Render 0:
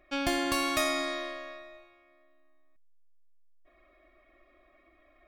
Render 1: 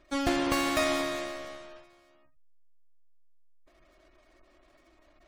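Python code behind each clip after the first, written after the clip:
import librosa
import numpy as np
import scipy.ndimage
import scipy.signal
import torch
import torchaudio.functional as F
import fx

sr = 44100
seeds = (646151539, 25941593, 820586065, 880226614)

y = fx.halfwave_hold(x, sr)
y = fx.spec_gate(y, sr, threshold_db=-30, keep='strong')
y = y * librosa.db_to_amplitude(-3.0)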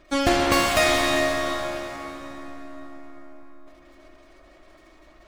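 y = fx.rev_plate(x, sr, seeds[0], rt60_s=4.8, hf_ratio=0.65, predelay_ms=0, drr_db=1.5)
y = y * librosa.db_to_amplitude(7.5)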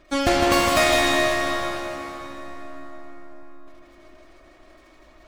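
y = x + 10.0 ** (-5.5 / 20.0) * np.pad(x, (int(157 * sr / 1000.0), 0))[:len(x)]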